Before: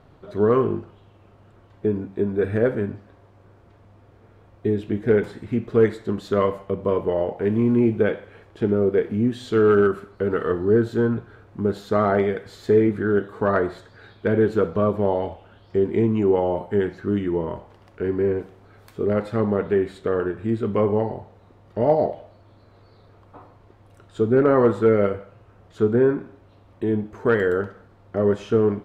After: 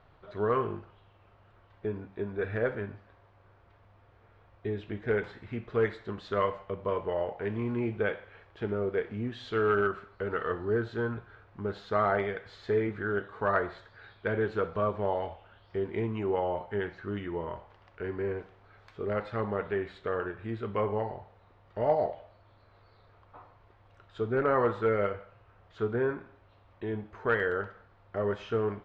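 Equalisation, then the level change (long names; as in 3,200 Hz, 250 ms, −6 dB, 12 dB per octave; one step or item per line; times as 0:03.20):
high-frequency loss of the air 200 metres
low-shelf EQ 170 Hz −4.5 dB
parametric band 260 Hz −13 dB 2.4 octaves
0.0 dB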